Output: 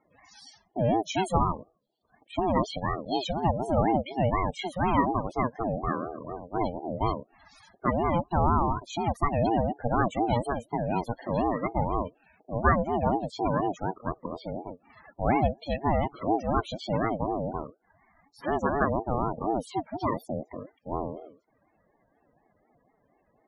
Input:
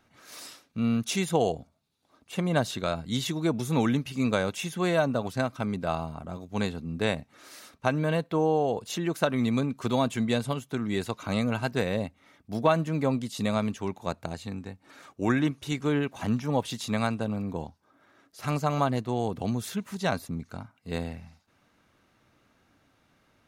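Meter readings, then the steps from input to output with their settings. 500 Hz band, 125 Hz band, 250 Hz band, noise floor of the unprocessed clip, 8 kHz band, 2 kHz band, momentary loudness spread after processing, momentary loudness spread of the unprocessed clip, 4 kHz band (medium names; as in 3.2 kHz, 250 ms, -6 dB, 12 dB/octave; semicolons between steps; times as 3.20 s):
0.0 dB, -1.0 dB, -2.0 dB, -68 dBFS, no reading, -2.5 dB, 11 LU, 13 LU, -5.5 dB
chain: loudest bins only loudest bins 16; ring modulator with a swept carrier 460 Hz, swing 25%, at 4.1 Hz; trim +4 dB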